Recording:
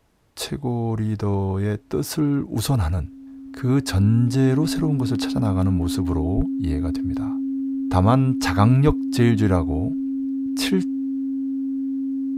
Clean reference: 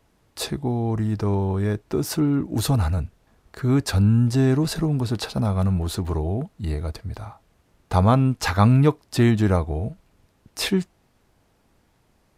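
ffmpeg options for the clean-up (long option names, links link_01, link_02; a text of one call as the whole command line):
ffmpeg -i in.wav -filter_complex "[0:a]bandreject=frequency=270:width=30,asplit=3[link_01][link_02][link_03];[link_01]afade=type=out:start_time=6.36:duration=0.02[link_04];[link_02]highpass=frequency=140:width=0.5412,highpass=frequency=140:width=1.3066,afade=type=in:start_time=6.36:duration=0.02,afade=type=out:start_time=6.48:duration=0.02[link_05];[link_03]afade=type=in:start_time=6.48:duration=0.02[link_06];[link_04][link_05][link_06]amix=inputs=3:normalize=0,asplit=3[link_07][link_08][link_09];[link_07]afade=type=out:start_time=8.86:duration=0.02[link_10];[link_08]highpass=frequency=140:width=0.5412,highpass=frequency=140:width=1.3066,afade=type=in:start_time=8.86:duration=0.02,afade=type=out:start_time=8.98:duration=0.02[link_11];[link_09]afade=type=in:start_time=8.98:duration=0.02[link_12];[link_10][link_11][link_12]amix=inputs=3:normalize=0" out.wav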